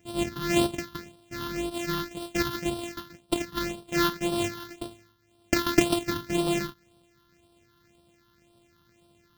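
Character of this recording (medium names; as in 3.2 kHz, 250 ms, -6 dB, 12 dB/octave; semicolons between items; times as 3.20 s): a buzz of ramps at a fixed pitch in blocks of 128 samples; phasing stages 6, 1.9 Hz, lowest notch 600–1900 Hz; AAC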